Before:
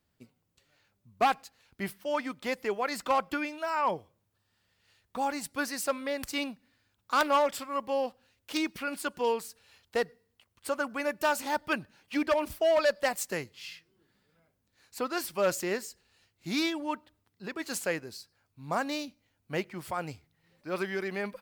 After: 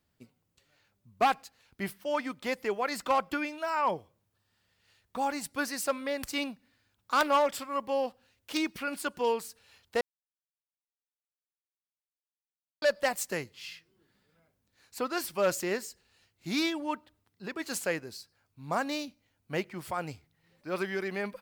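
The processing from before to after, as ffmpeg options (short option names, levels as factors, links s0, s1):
-filter_complex "[0:a]asplit=3[s0][s1][s2];[s0]atrim=end=10.01,asetpts=PTS-STARTPTS,afade=t=out:st=10.006:d=0.004:c=hsin[s3];[s1]atrim=start=10.01:end=12.82,asetpts=PTS-STARTPTS,volume=0[s4];[s2]atrim=start=12.82,asetpts=PTS-STARTPTS,afade=t=in:d=0.004:c=hsin[s5];[s3][s4][s5]concat=n=3:v=0:a=1"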